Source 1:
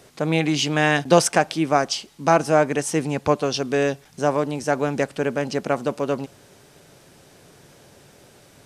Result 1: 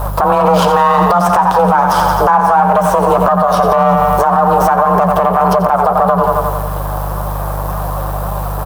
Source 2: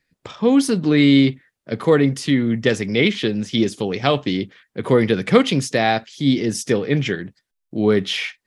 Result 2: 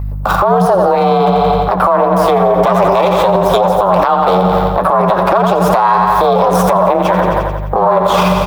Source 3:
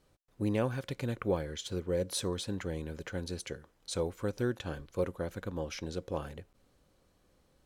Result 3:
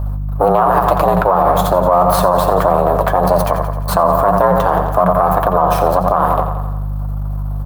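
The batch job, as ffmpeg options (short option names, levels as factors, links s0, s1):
-filter_complex "[0:a]aeval=exprs='max(val(0),0)':c=same,afreqshift=180,lowshelf=f=220:g=5.5,acrossover=split=8500[s0][s1];[s1]acompressor=threshold=0.00141:ratio=4:attack=1:release=60[s2];[s0][s2]amix=inputs=2:normalize=0,flanger=delay=4.8:depth=4.6:regen=55:speed=1.8:shape=sinusoidal,aeval=exprs='val(0)+0.00398*(sin(2*PI*50*n/s)+sin(2*PI*2*50*n/s)/2+sin(2*PI*3*50*n/s)/3+sin(2*PI*4*50*n/s)/4+sin(2*PI*5*50*n/s)/5)':c=same,firequalizer=gain_entry='entry(120,0);entry(220,-12);entry(360,-8);entry(520,4);entry(1100,13);entry(2000,-11);entry(3500,-10);entry(6500,-13);entry(14000,11)':delay=0.05:min_phase=1,asplit=2[s3][s4];[s4]aecho=0:1:87|174|261|348|435|522|609:0.282|0.166|0.0981|0.0579|0.0342|0.0201|0.0119[s5];[s3][s5]amix=inputs=2:normalize=0,acompressor=threshold=0.0282:ratio=12,alimiter=level_in=39.8:limit=0.891:release=50:level=0:latency=1,volume=0.891"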